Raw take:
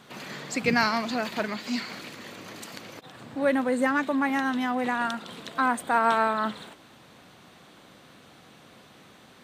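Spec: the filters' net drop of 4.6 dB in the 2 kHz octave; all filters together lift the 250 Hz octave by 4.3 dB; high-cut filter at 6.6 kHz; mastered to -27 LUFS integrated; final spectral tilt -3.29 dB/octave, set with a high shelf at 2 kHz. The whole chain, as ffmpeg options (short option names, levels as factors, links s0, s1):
-af "lowpass=6600,equalizer=f=250:t=o:g=4.5,highshelf=f=2000:g=4.5,equalizer=f=2000:t=o:g=-9,volume=0.841"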